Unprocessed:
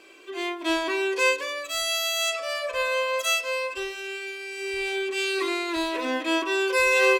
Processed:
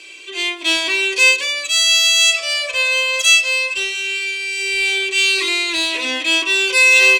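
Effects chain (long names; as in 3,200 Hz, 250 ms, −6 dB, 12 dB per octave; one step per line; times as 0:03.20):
flat-topped bell 4,500 Hz +16 dB 2.5 octaves
notch filter 5,100 Hz, Q 28
in parallel at −6 dB: soft clipping −19 dBFS, distortion −5 dB
on the sum: level −3 dB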